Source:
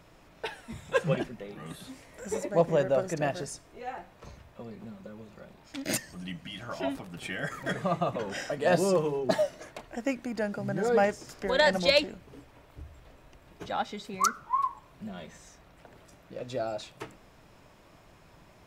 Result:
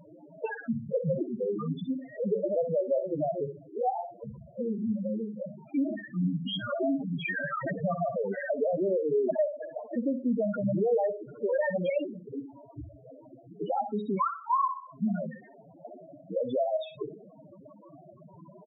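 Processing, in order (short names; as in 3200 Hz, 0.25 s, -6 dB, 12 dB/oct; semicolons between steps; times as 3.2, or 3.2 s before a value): HPF 160 Hz 12 dB/oct; in parallel at +0.5 dB: limiter -18.5 dBFS, peak gain reduction 8 dB; on the sum: compressor 8:1, threshold -30 dBFS, peak gain reduction 16 dB; sample leveller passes 2; on a send: flutter echo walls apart 10.6 m, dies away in 0.45 s; on the sum: downsampling 8000 Hz; loudest bins only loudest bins 4; gain +1.5 dB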